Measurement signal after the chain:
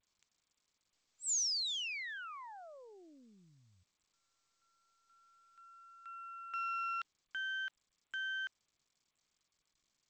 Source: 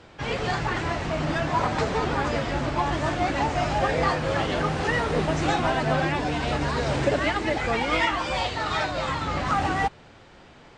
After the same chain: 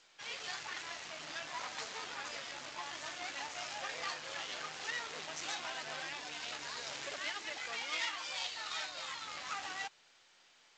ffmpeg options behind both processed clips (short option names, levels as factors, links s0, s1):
-af "aeval=exprs='(tanh(7.94*val(0)+0.7)-tanh(0.7))/7.94':c=same,aderivative,volume=1.26" -ar 16000 -c:a g722